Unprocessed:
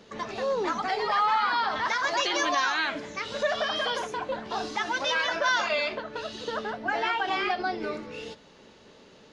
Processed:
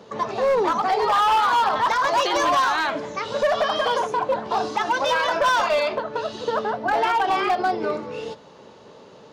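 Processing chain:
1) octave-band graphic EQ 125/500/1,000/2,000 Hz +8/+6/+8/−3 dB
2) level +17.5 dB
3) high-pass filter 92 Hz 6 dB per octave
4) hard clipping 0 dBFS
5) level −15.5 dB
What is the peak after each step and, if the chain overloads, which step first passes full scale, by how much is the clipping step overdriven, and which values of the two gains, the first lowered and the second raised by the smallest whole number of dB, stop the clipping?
−8.5, +9.0, +9.0, 0.0, −15.5 dBFS
step 2, 9.0 dB
step 2 +8.5 dB, step 5 −6.5 dB

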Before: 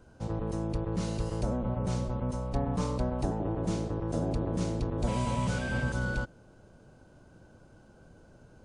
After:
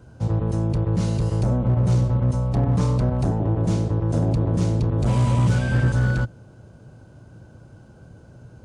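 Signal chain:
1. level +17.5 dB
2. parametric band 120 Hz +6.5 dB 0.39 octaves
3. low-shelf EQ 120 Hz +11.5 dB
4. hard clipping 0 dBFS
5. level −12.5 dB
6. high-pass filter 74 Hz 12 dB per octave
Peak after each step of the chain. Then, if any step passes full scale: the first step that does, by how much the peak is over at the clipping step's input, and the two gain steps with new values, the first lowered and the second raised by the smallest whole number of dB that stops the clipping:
+0.5, +2.0, +9.0, 0.0, −12.5, −8.5 dBFS
step 1, 9.0 dB
step 1 +8.5 dB, step 5 −3.5 dB

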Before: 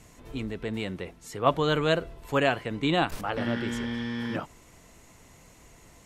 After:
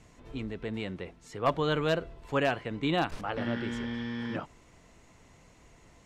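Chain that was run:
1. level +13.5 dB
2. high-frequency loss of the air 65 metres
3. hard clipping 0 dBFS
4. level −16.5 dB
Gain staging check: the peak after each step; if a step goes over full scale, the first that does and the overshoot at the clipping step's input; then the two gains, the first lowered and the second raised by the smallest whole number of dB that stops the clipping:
+6.5, +6.0, 0.0, −16.5 dBFS
step 1, 6.0 dB
step 1 +7.5 dB, step 4 −10.5 dB

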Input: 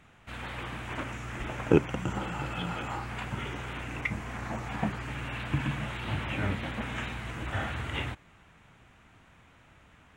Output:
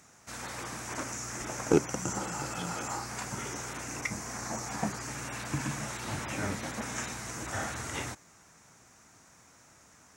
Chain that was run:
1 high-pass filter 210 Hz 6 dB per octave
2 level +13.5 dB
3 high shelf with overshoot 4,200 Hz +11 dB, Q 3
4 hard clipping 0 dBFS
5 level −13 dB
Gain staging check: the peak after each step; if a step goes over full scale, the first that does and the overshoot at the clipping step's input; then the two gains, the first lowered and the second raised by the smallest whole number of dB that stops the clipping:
−10.0, +3.5, +4.0, 0.0, −13.0 dBFS
step 2, 4.0 dB
step 2 +9.5 dB, step 5 −9 dB

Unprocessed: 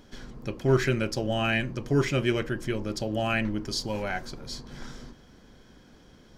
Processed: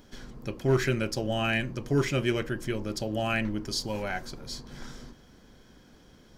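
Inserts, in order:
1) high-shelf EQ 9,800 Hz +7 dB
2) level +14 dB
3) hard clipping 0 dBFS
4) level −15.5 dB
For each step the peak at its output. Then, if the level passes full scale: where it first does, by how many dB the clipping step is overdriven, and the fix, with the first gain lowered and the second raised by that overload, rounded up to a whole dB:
−9.5, +4.5, 0.0, −15.5 dBFS
step 2, 4.5 dB
step 2 +9 dB, step 4 −10.5 dB

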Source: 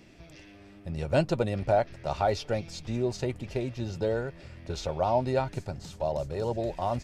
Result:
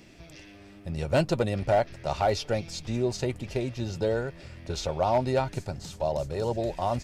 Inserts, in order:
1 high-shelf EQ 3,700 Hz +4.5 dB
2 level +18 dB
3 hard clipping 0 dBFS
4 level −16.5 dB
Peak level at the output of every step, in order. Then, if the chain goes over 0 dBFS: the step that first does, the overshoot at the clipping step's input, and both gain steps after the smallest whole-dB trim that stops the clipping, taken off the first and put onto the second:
−12.5, +5.5, 0.0, −16.5 dBFS
step 2, 5.5 dB
step 2 +12 dB, step 4 −10.5 dB

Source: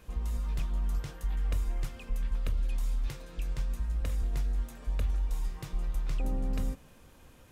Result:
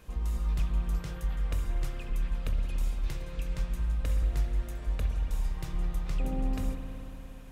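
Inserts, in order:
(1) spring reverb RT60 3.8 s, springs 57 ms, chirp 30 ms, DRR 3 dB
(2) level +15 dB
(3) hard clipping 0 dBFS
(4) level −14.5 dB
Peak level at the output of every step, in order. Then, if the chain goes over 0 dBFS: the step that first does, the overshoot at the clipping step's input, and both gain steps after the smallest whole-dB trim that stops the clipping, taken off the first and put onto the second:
−19.0, −4.0, −4.0, −18.5 dBFS
no step passes full scale

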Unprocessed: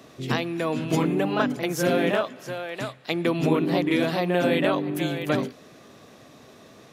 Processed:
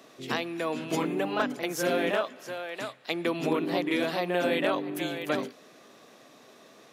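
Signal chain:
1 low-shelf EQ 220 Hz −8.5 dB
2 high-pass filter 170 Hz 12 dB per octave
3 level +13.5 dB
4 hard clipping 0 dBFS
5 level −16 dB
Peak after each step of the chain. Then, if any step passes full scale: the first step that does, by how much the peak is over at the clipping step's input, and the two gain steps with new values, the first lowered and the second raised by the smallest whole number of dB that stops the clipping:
−10.0, −9.0, +4.5, 0.0, −16.0 dBFS
step 3, 4.5 dB
step 3 +8.5 dB, step 5 −11 dB

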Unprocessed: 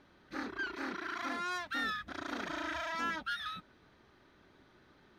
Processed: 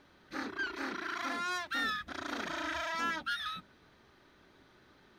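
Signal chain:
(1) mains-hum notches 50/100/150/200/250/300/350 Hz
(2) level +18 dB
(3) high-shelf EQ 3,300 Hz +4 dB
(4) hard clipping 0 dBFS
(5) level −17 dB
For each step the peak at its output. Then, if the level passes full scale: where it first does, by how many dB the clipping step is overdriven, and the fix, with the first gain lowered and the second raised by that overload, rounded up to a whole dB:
−24.5, −6.5, −5.5, −5.5, −22.5 dBFS
no step passes full scale

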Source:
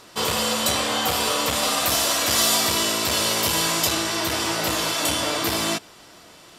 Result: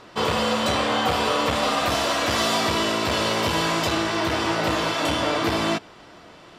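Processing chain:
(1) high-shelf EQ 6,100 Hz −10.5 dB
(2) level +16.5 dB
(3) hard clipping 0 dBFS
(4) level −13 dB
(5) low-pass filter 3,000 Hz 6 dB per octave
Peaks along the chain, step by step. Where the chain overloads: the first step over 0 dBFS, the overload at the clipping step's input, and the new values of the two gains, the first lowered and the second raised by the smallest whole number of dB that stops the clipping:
−11.0, +5.5, 0.0, −13.0, −13.0 dBFS
step 2, 5.5 dB
step 2 +10.5 dB, step 4 −7 dB

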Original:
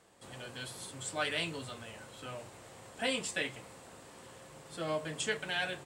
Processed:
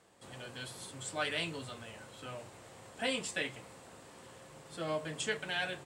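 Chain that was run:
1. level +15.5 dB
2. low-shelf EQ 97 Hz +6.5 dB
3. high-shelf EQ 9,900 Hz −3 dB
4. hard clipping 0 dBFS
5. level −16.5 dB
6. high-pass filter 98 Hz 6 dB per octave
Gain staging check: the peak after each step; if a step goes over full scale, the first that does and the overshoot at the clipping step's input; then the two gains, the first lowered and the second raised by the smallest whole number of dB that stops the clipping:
−4.5, −4.5, −4.5, −4.5, −21.0, −21.0 dBFS
no step passes full scale

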